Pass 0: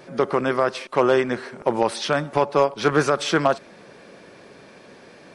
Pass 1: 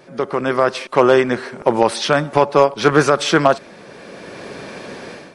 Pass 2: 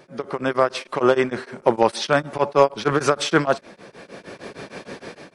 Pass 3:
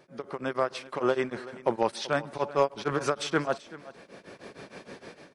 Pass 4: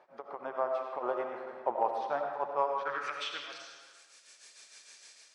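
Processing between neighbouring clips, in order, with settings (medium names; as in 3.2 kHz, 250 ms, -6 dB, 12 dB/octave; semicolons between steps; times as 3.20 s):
level rider gain up to 15 dB; trim -1 dB
tremolo of two beating tones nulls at 6.5 Hz; trim -1.5 dB
delay 382 ms -18 dB; trim -9 dB
band-pass sweep 810 Hz -> 7.3 kHz, 2.56–3.76 s; reverberation RT60 1.2 s, pre-delay 45 ms, DRR 2.5 dB; tape noise reduction on one side only encoder only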